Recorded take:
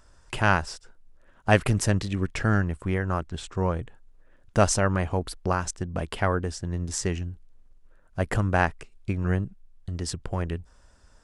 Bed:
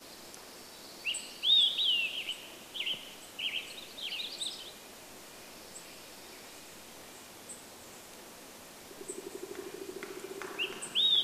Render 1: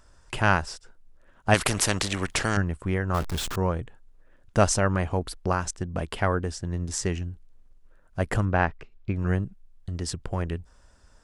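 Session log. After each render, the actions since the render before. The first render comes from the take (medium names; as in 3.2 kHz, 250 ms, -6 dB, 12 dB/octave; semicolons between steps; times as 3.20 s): 1.54–2.57 s: spectrum-flattening compressor 2:1; 3.14–3.56 s: jump at every zero crossing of -27.5 dBFS; 8.45–9.16 s: distance through air 180 m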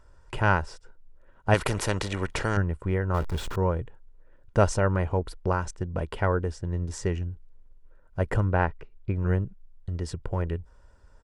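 treble shelf 2.6 kHz -11.5 dB; comb 2.1 ms, depth 32%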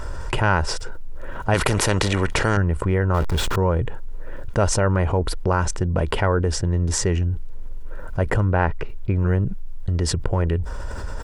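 level flattener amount 70%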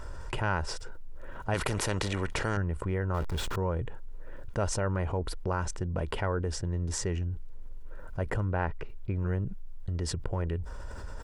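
trim -10.5 dB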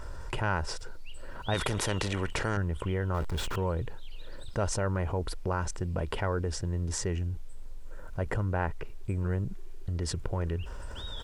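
add bed -18 dB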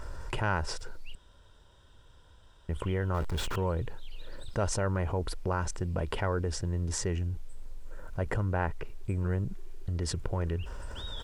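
1.15–2.69 s: room tone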